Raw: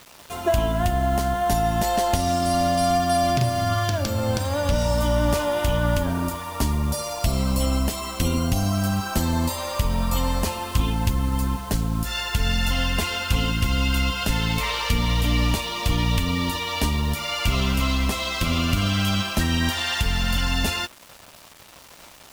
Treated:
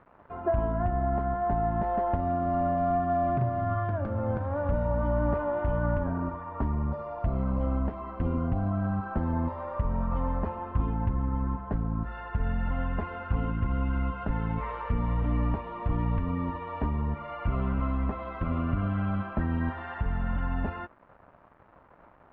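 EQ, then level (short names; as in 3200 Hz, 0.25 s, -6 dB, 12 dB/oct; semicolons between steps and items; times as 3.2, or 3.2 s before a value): LPF 1500 Hz 24 dB/oct; -5.5 dB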